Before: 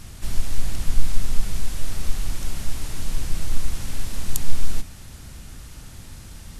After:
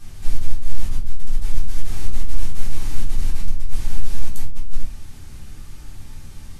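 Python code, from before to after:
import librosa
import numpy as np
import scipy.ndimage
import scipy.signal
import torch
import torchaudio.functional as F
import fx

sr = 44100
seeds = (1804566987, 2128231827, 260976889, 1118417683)

y = fx.reverse_delay(x, sr, ms=275, wet_db=-4.5, at=(1.49, 3.78))
y = fx.over_compress(y, sr, threshold_db=-17.0, ratio=-1.0)
y = fx.room_shoebox(y, sr, seeds[0], volume_m3=290.0, walls='furnished', distance_m=3.7)
y = y * librosa.db_to_amplitude(-13.0)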